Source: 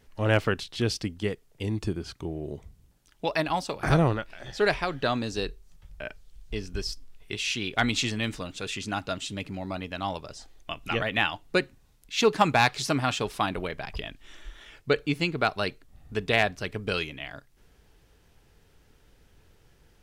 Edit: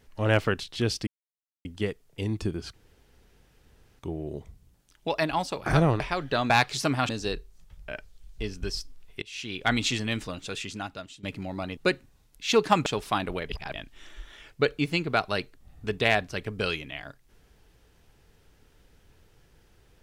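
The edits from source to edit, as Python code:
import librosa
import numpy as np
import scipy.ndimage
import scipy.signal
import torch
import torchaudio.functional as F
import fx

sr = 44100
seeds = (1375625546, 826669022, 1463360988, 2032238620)

y = fx.edit(x, sr, fx.insert_silence(at_s=1.07, length_s=0.58),
    fx.insert_room_tone(at_s=2.16, length_s=1.25),
    fx.cut(start_s=4.17, length_s=0.54),
    fx.fade_in_from(start_s=7.34, length_s=0.47, floor_db=-24.0),
    fx.fade_out_to(start_s=8.58, length_s=0.77, floor_db=-17.5),
    fx.cut(start_s=9.89, length_s=1.57),
    fx.move(start_s=12.55, length_s=0.59, to_s=5.21),
    fx.reverse_span(start_s=13.77, length_s=0.25), tone=tone)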